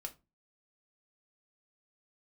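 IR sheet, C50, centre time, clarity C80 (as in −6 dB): 18.0 dB, 6 ms, 25.5 dB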